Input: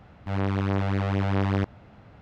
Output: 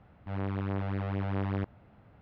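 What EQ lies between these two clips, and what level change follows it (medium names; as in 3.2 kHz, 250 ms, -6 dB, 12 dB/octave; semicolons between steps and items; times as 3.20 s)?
distance through air 220 m; -7.0 dB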